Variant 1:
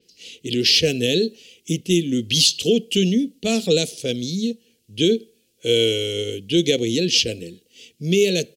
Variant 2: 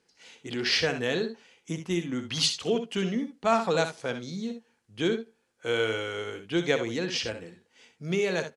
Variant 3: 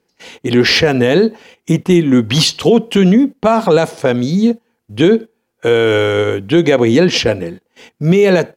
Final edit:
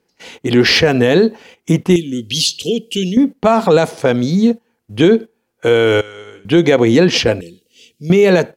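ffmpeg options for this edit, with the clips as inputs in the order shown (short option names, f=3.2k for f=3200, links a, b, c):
-filter_complex "[0:a]asplit=2[a][b];[2:a]asplit=4[c][d][e][f];[c]atrim=end=1.962[g];[a]atrim=start=1.958:end=3.172[h];[d]atrim=start=3.168:end=6.012[i];[1:a]atrim=start=6.008:end=6.452[j];[e]atrim=start=6.448:end=7.412[k];[b]atrim=start=7.408:end=8.102[l];[f]atrim=start=8.098[m];[g][h]acrossfade=d=0.004:c1=hsin:c2=hsin[n];[n][i]acrossfade=d=0.004:c1=hsin:c2=hsin[o];[o][j]acrossfade=d=0.004:c1=hsin:c2=hsin[p];[p][k]acrossfade=d=0.004:c1=hsin:c2=hsin[q];[q][l]acrossfade=d=0.004:c1=hsin:c2=hsin[r];[r][m]acrossfade=d=0.004:c1=hsin:c2=hsin"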